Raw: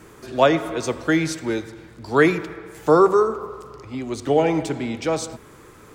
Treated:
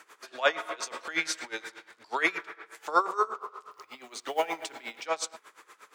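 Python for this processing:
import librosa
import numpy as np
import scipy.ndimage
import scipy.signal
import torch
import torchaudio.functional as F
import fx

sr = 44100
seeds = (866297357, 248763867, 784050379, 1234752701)

y = scipy.signal.sosfilt(scipy.signal.butter(2, 980.0, 'highpass', fs=sr, output='sos'), x)
y = fx.high_shelf(y, sr, hz=8300.0, db=-9.5)
y = fx.transient(y, sr, attack_db=-10, sustain_db=6, at=(0.63, 2.11), fade=0.02)
y = fx.quant_companded(y, sr, bits=6, at=(3.71, 5.06))
y = y * 10.0 ** (-19 * (0.5 - 0.5 * np.cos(2.0 * np.pi * 8.4 * np.arange(len(y)) / sr)) / 20.0)
y = y * librosa.db_to_amplitude(3.5)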